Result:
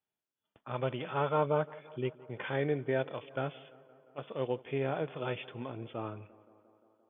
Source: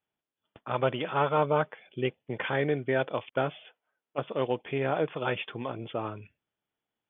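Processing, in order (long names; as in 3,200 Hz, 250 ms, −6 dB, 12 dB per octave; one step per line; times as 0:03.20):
harmonic and percussive parts rebalanced percussive −8 dB
tape delay 173 ms, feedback 79%, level −20 dB, low-pass 2,500 Hz
level −2.5 dB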